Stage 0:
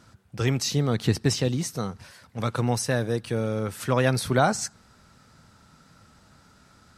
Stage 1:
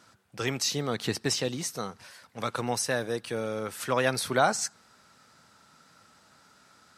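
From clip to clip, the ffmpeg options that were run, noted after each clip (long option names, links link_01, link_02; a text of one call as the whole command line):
ffmpeg -i in.wav -af "highpass=frequency=490:poles=1" out.wav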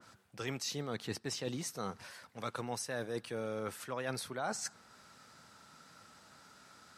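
ffmpeg -i in.wav -af "areverse,acompressor=threshold=-35dB:ratio=6,areverse,adynamicequalizer=threshold=0.00158:dfrequency=2300:dqfactor=0.7:tfrequency=2300:tqfactor=0.7:attack=5:release=100:ratio=0.375:range=1.5:mode=cutabove:tftype=highshelf" out.wav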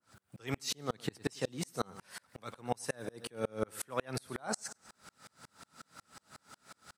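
ffmpeg -i in.wav -af "aecho=1:1:101|202|303:0.141|0.0551|0.0215,aexciter=amount=1.4:drive=6.7:freq=8000,aeval=exprs='val(0)*pow(10,-37*if(lt(mod(-5.5*n/s,1),2*abs(-5.5)/1000),1-mod(-5.5*n/s,1)/(2*abs(-5.5)/1000),(mod(-5.5*n/s,1)-2*abs(-5.5)/1000)/(1-2*abs(-5.5)/1000))/20)':channel_layout=same,volume=10dB" out.wav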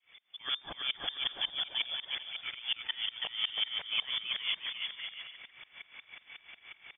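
ffmpeg -i in.wav -af "asoftclip=type=tanh:threshold=-27dB,lowpass=frequency=3100:width_type=q:width=0.5098,lowpass=frequency=3100:width_type=q:width=0.6013,lowpass=frequency=3100:width_type=q:width=0.9,lowpass=frequency=3100:width_type=q:width=2.563,afreqshift=-3600,aecho=1:1:330|544.5|683.9|774.6|833.5:0.631|0.398|0.251|0.158|0.1,volume=4dB" out.wav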